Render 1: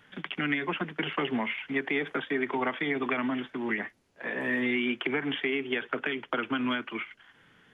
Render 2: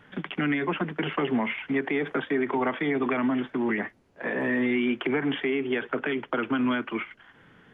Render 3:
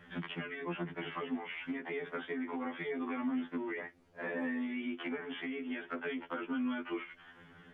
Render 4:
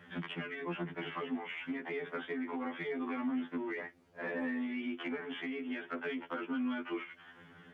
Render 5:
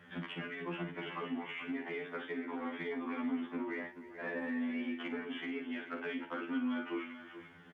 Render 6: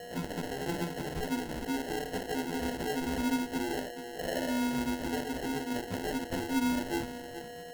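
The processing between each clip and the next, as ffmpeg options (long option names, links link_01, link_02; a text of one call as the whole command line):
ffmpeg -i in.wav -filter_complex "[0:a]highshelf=frequency=2200:gain=-12,asplit=2[link_01][link_02];[link_02]alimiter=level_in=4dB:limit=-24dB:level=0:latency=1:release=46,volume=-4dB,volume=3dB[link_03];[link_01][link_03]amix=inputs=2:normalize=0" out.wav
ffmpeg -i in.wav -af "acompressor=threshold=-34dB:ratio=5,afftfilt=real='re*2*eq(mod(b,4),0)':imag='im*2*eq(mod(b,4),0)':win_size=2048:overlap=0.75" out.wav
ffmpeg -i in.wav -filter_complex "[0:a]highpass=75,asplit=2[link_01][link_02];[link_02]asoftclip=type=tanh:threshold=-35dB,volume=-11dB[link_03];[link_01][link_03]amix=inputs=2:normalize=0,volume=-1.5dB" out.wav
ffmpeg -i in.wav -af "aecho=1:1:41|56|302|432:0.299|0.299|0.133|0.266,volume=-2dB" out.wav
ffmpeg -i in.wav -af "aeval=exprs='val(0)+0.00398*sin(2*PI*1900*n/s)':channel_layout=same,acrusher=samples=37:mix=1:aa=0.000001,volume=5.5dB" out.wav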